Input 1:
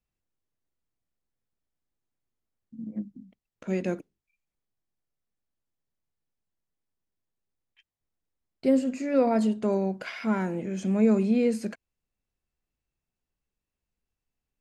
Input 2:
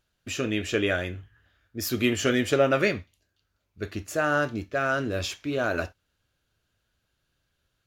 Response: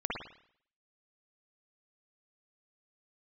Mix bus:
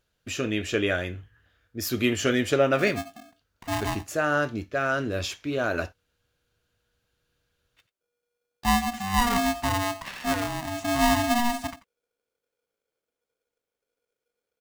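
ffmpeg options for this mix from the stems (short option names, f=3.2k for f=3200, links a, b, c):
-filter_complex "[0:a]aeval=exprs='val(0)*sgn(sin(2*PI*480*n/s))':c=same,volume=-0.5dB,asplit=2[a][b];[b]volume=-16.5dB[c];[1:a]volume=0dB[d];[c]aecho=0:1:88:1[e];[a][d][e]amix=inputs=3:normalize=0"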